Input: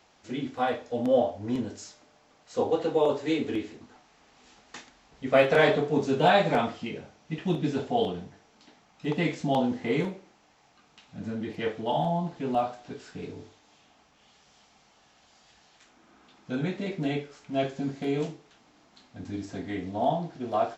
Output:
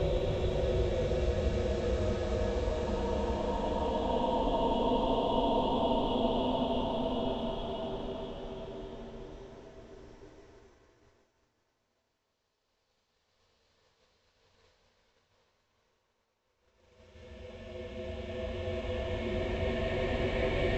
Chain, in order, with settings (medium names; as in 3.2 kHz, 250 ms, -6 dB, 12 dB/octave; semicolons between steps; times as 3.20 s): ring modulator 210 Hz; Paulstretch 13×, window 0.50 s, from 7.57 s; expander -51 dBFS